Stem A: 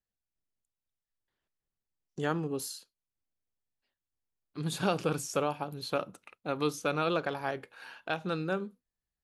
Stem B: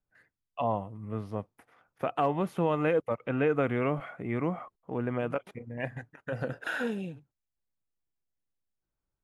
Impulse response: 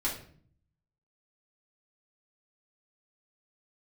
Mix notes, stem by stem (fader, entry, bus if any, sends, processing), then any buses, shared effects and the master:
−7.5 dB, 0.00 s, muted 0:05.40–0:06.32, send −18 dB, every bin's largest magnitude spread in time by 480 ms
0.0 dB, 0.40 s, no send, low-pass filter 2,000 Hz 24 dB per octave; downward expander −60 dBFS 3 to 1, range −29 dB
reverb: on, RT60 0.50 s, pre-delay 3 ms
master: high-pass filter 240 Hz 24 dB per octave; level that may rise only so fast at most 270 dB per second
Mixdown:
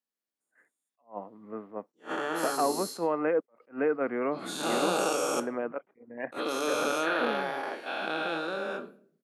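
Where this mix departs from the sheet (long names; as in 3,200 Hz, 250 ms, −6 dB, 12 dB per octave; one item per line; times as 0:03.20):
stem A: send −18 dB → −12 dB
stem B: missing downward expander −60 dBFS 3 to 1, range −29 dB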